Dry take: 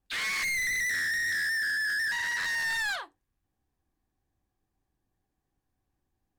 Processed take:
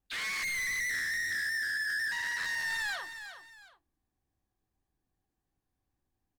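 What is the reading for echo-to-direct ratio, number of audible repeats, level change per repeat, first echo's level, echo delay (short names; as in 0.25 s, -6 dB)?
-10.0 dB, 2, -10.0 dB, -10.5 dB, 0.364 s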